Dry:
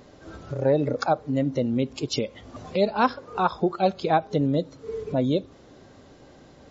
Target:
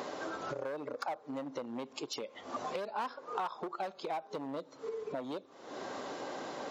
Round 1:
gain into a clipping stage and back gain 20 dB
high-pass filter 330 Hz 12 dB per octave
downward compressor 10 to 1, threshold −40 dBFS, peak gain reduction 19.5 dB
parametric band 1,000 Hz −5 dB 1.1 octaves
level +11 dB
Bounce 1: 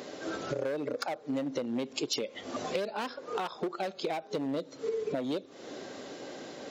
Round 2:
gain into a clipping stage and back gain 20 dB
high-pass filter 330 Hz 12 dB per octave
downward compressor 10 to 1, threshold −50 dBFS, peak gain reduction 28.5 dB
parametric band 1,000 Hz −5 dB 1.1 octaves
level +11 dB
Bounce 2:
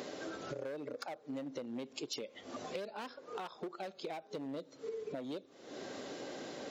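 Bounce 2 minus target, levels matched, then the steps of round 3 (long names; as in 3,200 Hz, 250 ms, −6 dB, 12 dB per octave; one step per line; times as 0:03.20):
1,000 Hz band −5.5 dB
gain into a clipping stage and back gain 20 dB
high-pass filter 330 Hz 12 dB per octave
downward compressor 10 to 1, threshold −50 dBFS, peak gain reduction 28.5 dB
parametric band 1,000 Hz +6.5 dB 1.1 octaves
level +11 dB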